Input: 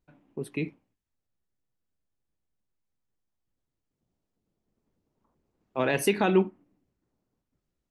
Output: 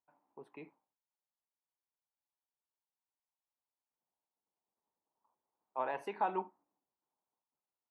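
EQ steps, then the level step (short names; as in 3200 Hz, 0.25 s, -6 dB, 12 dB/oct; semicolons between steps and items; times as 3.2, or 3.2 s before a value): band-pass 910 Hz, Q 3.9; 0.0 dB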